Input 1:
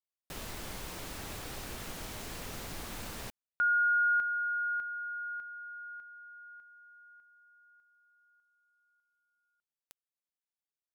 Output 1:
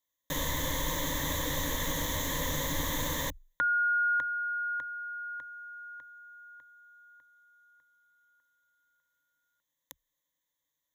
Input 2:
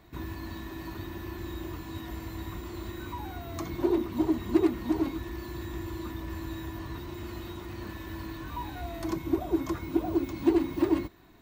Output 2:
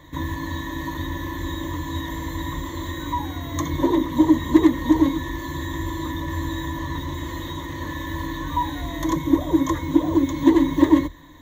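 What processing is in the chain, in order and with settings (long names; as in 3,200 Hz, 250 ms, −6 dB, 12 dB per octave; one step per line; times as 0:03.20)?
EQ curve with evenly spaced ripples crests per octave 1.1, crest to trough 16 dB
level +7 dB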